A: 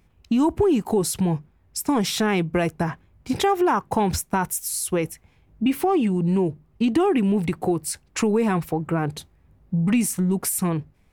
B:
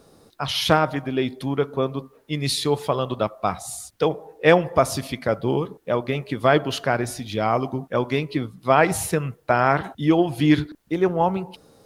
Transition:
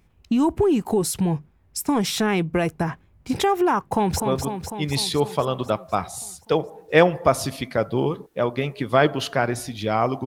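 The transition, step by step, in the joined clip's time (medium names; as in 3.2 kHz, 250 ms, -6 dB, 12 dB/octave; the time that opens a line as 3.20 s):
A
3.90–4.20 s: echo throw 250 ms, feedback 70%, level -6 dB
4.20 s: go over to B from 1.71 s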